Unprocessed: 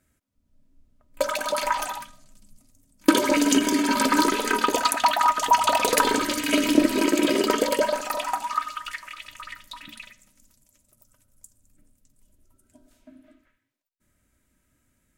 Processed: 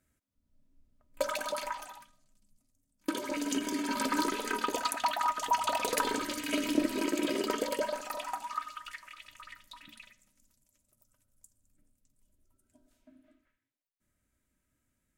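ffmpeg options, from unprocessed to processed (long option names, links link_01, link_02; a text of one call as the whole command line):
ffmpeg -i in.wav -af "volume=-1dB,afade=type=out:start_time=1.39:duration=0.42:silence=0.354813,afade=type=in:start_time=3.12:duration=0.92:silence=0.501187" out.wav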